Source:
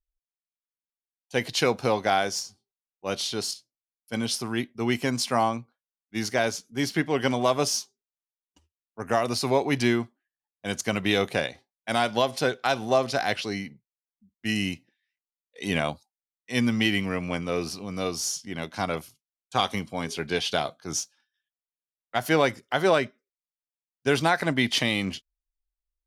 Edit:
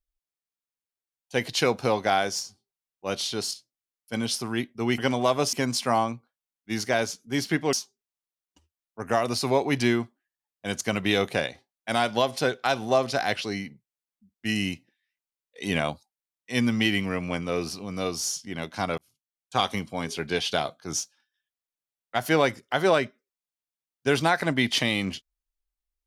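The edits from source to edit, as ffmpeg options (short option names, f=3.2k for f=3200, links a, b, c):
-filter_complex "[0:a]asplit=5[a][b][c][d][e];[a]atrim=end=4.982[f];[b]atrim=start=7.178:end=7.732[g];[c]atrim=start=4.978:end=7.182[h];[d]atrim=start=7.728:end=18.98,asetpts=PTS-STARTPTS,afade=t=out:st=11.248:d=0.004:c=hsin[i];[e]atrim=start=18.98,asetpts=PTS-STARTPTS,afade=t=in:d=0.59[j];[f][g]acrossfade=d=0.004:c1=hsin:c2=hsin[k];[k][h]acrossfade=d=0.004:c1=hsin:c2=hsin[l];[i][j]concat=n=2:v=0:a=1[m];[l][m]acrossfade=d=0.004:c1=hsin:c2=hsin"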